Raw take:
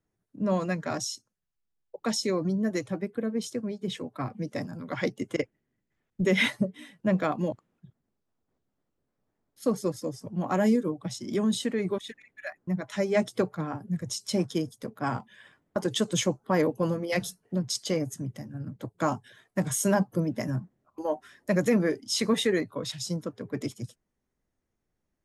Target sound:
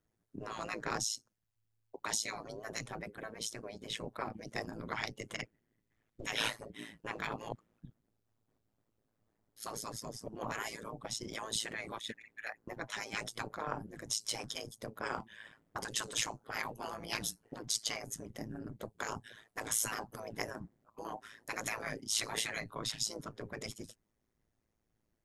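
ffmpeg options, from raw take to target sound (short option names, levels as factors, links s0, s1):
-af "afftfilt=real='re*lt(hypot(re,im),0.1)':imag='im*lt(hypot(re,im),0.1)':win_size=1024:overlap=0.75,tremolo=f=110:d=0.857,volume=1.5"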